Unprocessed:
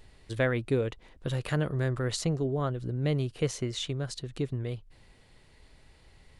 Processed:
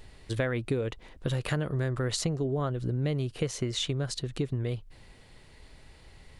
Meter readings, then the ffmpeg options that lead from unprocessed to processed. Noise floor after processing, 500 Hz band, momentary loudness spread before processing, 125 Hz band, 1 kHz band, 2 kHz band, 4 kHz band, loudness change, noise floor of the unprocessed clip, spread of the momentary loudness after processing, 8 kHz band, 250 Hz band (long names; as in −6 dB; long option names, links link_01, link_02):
−54 dBFS, −1.0 dB, 7 LU, +0.5 dB, −0.5 dB, −1.5 dB, +2.5 dB, 0.0 dB, −59 dBFS, 5 LU, +2.5 dB, 0.0 dB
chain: -af "acompressor=threshold=-30dB:ratio=6,volume=4.5dB"